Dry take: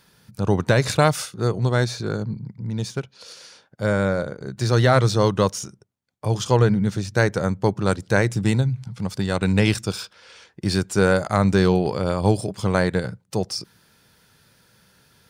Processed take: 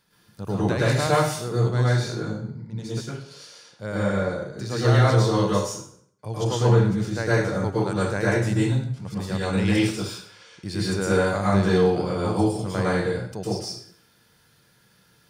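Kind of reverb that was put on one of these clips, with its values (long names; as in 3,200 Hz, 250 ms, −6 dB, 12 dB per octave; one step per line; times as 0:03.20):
dense smooth reverb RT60 0.6 s, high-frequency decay 0.85×, pre-delay 95 ms, DRR −7.5 dB
level −10.5 dB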